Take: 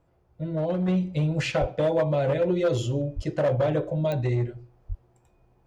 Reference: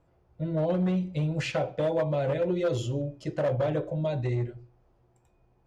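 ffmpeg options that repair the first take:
-filter_complex "[0:a]adeclick=t=4,asplit=3[s0][s1][s2];[s0]afade=t=out:st=1.6:d=0.02[s3];[s1]highpass=f=140:w=0.5412,highpass=f=140:w=1.3066,afade=t=in:st=1.6:d=0.02,afade=t=out:st=1.72:d=0.02[s4];[s2]afade=t=in:st=1.72:d=0.02[s5];[s3][s4][s5]amix=inputs=3:normalize=0,asplit=3[s6][s7][s8];[s6]afade=t=out:st=3.15:d=0.02[s9];[s7]highpass=f=140:w=0.5412,highpass=f=140:w=1.3066,afade=t=in:st=3.15:d=0.02,afade=t=out:st=3.27:d=0.02[s10];[s8]afade=t=in:st=3.27:d=0.02[s11];[s9][s10][s11]amix=inputs=3:normalize=0,asplit=3[s12][s13][s14];[s12]afade=t=out:st=4.88:d=0.02[s15];[s13]highpass=f=140:w=0.5412,highpass=f=140:w=1.3066,afade=t=in:st=4.88:d=0.02,afade=t=out:st=5:d=0.02[s16];[s14]afade=t=in:st=5:d=0.02[s17];[s15][s16][s17]amix=inputs=3:normalize=0,asetnsamples=n=441:p=0,asendcmd='0.88 volume volume -3.5dB',volume=1"

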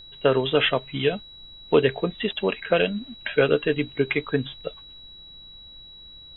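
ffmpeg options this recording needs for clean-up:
-af "bandreject=f=3900:w=30,agate=range=0.0891:threshold=0.0126"

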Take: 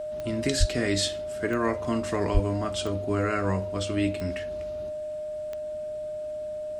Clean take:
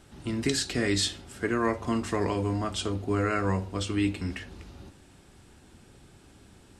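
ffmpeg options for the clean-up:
-filter_complex "[0:a]adeclick=t=4,bandreject=f=610:w=30,asplit=3[s0][s1][s2];[s0]afade=t=out:st=0.59:d=0.02[s3];[s1]highpass=f=140:w=0.5412,highpass=f=140:w=1.3066,afade=t=in:st=0.59:d=0.02,afade=t=out:st=0.71:d=0.02[s4];[s2]afade=t=in:st=0.71:d=0.02[s5];[s3][s4][s5]amix=inputs=3:normalize=0,asplit=3[s6][s7][s8];[s6]afade=t=out:st=2.33:d=0.02[s9];[s7]highpass=f=140:w=0.5412,highpass=f=140:w=1.3066,afade=t=in:st=2.33:d=0.02,afade=t=out:st=2.45:d=0.02[s10];[s8]afade=t=in:st=2.45:d=0.02[s11];[s9][s10][s11]amix=inputs=3:normalize=0"

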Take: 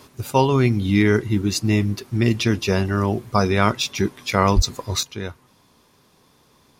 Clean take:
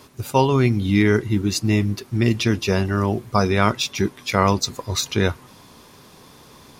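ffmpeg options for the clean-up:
-filter_complex "[0:a]asplit=3[s0][s1][s2];[s0]afade=t=out:st=4.55:d=0.02[s3];[s1]highpass=f=140:w=0.5412,highpass=f=140:w=1.3066,afade=t=in:st=4.55:d=0.02,afade=t=out:st=4.67:d=0.02[s4];[s2]afade=t=in:st=4.67:d=0.02[s5];[s3][s4][s5]amix=inputs=3:normalize=0,asetnsamples=n=441:p=0,asendcmd='5.03 volume volume 10.5dB',volume=1"

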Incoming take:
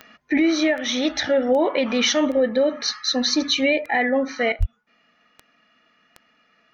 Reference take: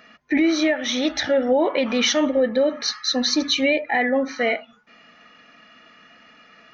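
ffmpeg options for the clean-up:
-filter_complex "[0:a]adeclick=t=4,asplit=3[s0][s1][s2];[s0]afade=t=out:st=4.59:d=0.02[s3];[s1]highpass=f=140:w=0.5412,highpass=f=140:w=1.3066,afade=t=in:st=4.59:d=0.02,afade=t=out:st=4.71:d=0.02[s4];[s2]afade=t=in:st=4.71:d=0.02[s5];[s3][s4][s5]amix=inputs=3:normalize=0,asetnsamples=n=441:p=0,asendcmd='4.52 volume volume 11dB',volume=1"

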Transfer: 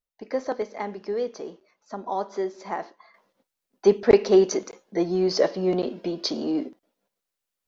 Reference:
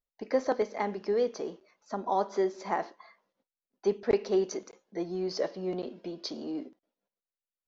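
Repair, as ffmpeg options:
-af "asetnsamples=n=441:p=0,asendcmd='3.14 volume volume -10dB',volume=1"

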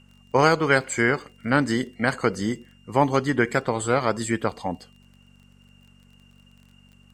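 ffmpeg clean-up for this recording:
-af "adeclick=t=4,bandreject=f=47.6:t=h:w=4,bandreject=f=95.2:t=h:w=4,bandreject=f=142.8:t=h:w=4,bandreject=f=190.4:t=h:w=4,bandreject=f=238:t=h:w=4"

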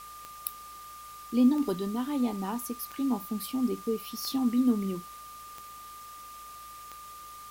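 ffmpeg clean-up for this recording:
-af "adeclick=t=4,bandreject=f=54.5:t=h:w=4,bandreject=f=109:t=h:w=4,bandreject=f=163.5:t=h:w=4,bandreject=f=218:t=h:w=4,bandreject=f=1200:w=30,afftdn=nr=29:nf=-46"

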